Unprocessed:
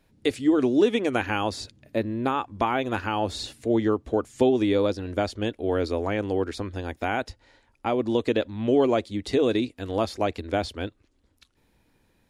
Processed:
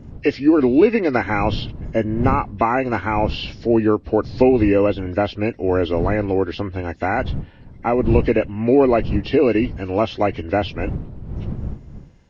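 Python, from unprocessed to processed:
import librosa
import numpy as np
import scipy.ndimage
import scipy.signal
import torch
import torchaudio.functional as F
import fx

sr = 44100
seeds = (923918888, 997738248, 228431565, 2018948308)

y = fx.freq_compress(x, sr, knee_hz=1500.0, ratio=1.5)
y = fx.dmg_wind(y, sr, seeds[0], corner_hz=130.0, level_db=-35.0)
y = F.gain(torch.from_numpy(y), 6.5).numpy()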